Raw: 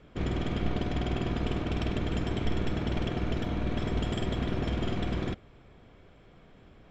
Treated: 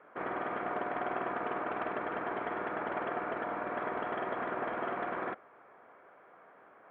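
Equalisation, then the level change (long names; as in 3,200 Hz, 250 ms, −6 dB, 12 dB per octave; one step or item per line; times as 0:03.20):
high-pass filter 810 Hz 12 dB per octave
low-pass filter 1,600 Hz 24 dB per octave
+9.0 dB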